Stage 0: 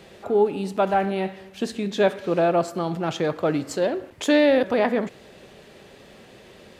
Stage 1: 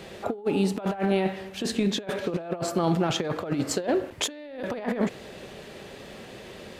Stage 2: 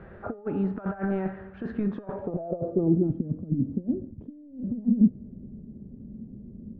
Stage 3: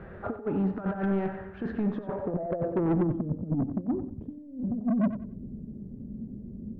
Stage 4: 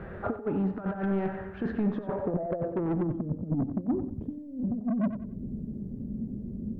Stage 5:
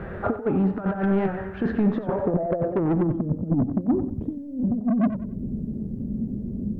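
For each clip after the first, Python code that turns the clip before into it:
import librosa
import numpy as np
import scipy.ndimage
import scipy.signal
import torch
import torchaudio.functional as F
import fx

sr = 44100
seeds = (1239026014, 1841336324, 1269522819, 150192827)

y1 = fx.over_compress(x, sr, threshold_db=-26.0, ratio=-0.5)
y2 = fx.filter_sweep_lowpass(y1, sr, from_hz=1500.0, to_hz=230.0, start_s=1.8, end_s=3.28, q=4.2)
y2 = fx.riaa(y2, sr, side='playback')
y2 = fx.comb_fb(y2, sr, f0_hz=610.0, decay_s=0.56, harmonics='all', damping=0.0, mix_pct=60)
y2 = y2 * 10.0 ** (-2.5 / 20.0)
y3 = 10.0 ** (-23.5 / 20.0) * np.tanh(y2 / 10.0 ** (-23.5 / 20.0))
y3 = fx.echo_feedback(y3, sr, ms=92, feedback_pct=25, wet_db=-11)
y3 = y3 * 10.0 ** (2.0 / 20.0)
y4 = fx.rider(y3, sr, range_db=4, speed_s=0.5)
y5 = fx.record_warp(y4, sr, rpm=78.0, depth_cents=100.0)
y5 = y5 * 10.0 ** (6.5 / 20.0)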